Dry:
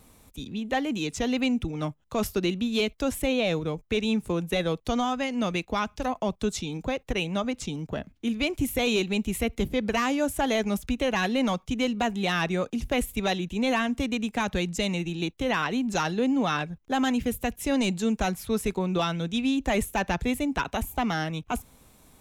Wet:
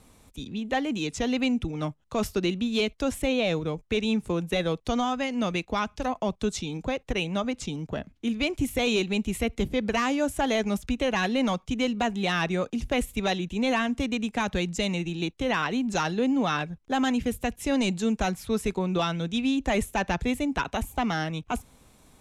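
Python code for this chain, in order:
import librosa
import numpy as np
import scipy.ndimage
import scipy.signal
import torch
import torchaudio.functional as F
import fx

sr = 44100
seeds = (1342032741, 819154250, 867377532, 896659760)

y = scipy.signal.sosfilt(scipy.signal.butter(2, 10000.0, 'lowpass', fs=sr, output='sos'), x)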